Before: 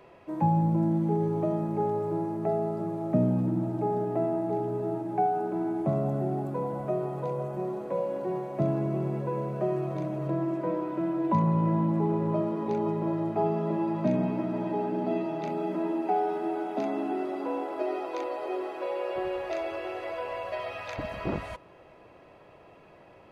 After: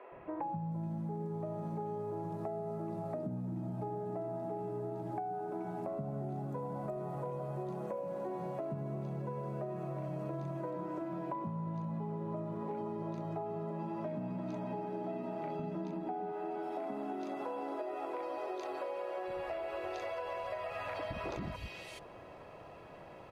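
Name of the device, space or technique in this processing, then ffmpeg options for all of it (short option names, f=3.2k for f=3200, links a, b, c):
serial compression, peaks first: -filter_complex "[0:a]asettb=1/sr,asplit=3[a][b][c];[a]atrim=end=15.474[d];[b]atrim=start=15.47:end=16.2,asetpts=PTS-STARTPTS,afade=t=in:d=0.004:c=qsin,afade=t=out:st=0.726:d=0.004:c=qsin,bass=f=250:g=13,treble=f=4k:g=-6[e];[c]atrim=start=16.196[f];[d][e]acrossfade=d=0.004:c1=hsin:c2=qsin[g];[g][f]acrossfade=d=0.004:c1=qsin:c2=hsin,acrossover=split=330|2500[h][i][j];[h]adelay=120[k];[j]adelay=430[l];[k][i][l]amix=inputs=3:normalize=0,acompressor=threshold=-35dB:ratio=6,acompressor=threshold=-42dB:ratio=2,volume=3dB"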